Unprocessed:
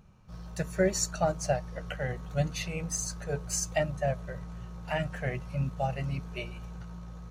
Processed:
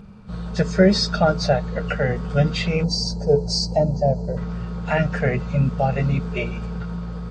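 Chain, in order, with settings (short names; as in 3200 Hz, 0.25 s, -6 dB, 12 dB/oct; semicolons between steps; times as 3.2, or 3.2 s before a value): nonlinear frequency compression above 2600 Hz 1.5:1; spectral gain 2.84–4.37, 1000–4000 Hz -21 dB; in parallel at -1 dB: limiter -27 dBFS, peak gain reduction 13 dB; on the sum: small resonant body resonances 210/440/1400 Hz, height 12 dB, ringing for 85 ms; gain +6 dB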